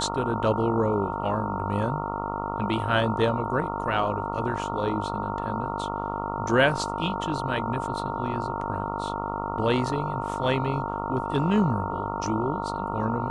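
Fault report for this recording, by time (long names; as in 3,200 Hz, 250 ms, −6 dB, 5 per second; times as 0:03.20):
mains buzz 50 Hz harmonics 28 −32 dBFS
whistle 920 Hz −32 dBFS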